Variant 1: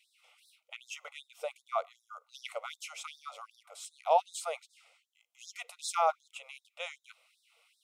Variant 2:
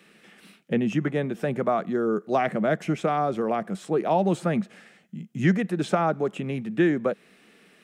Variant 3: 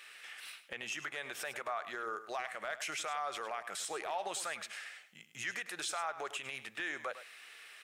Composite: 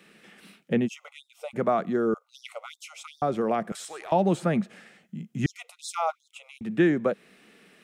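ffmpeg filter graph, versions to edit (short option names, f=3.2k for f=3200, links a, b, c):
-filter_complex "[0:a]asplit=3[a][b][c];[1:a]asplit=5[d][e][f][g][h];[d]atrim=end=0.89[i];[a]atrim=start=0.85:end=1.57[j];[e]atrim=start=1.53:end=2.142[k];[b]atrim=start=2.138:end=3.222[l];[f]atrim=start=3.218:end=3.722[m];[2:a]atrim=start=3.718:end=4.122[n];[g]atrim=start=4.118:end=5.462[o];[c]atrim=start=5.458:end=6.612[p];[h]atrim=start=6.608[q];[i][j]acrossfade=d=0.04:c1=tri:c2=tri[r];[r][k]acrossfade=d=0.04:c1=tri:c2=tri[s];[s][l]acrossfade=d=0.004:c1=hsin:c2=hsin[t];[t][m]acrossfade=d=0.004:c1=hsin:c2=hsin[u];[u][n]acrossfade=d=0.004:c1=hsin:c2=hsin[v];[v][o]acrossfade=d=0.004:c1=hsin:c2=hsin[w];[w][p]acrossfade=d=0.004:c1=hsin:c2=hsin[x];[x][q]acrossfade=d=0.004:c1=hsin:c2=hsin"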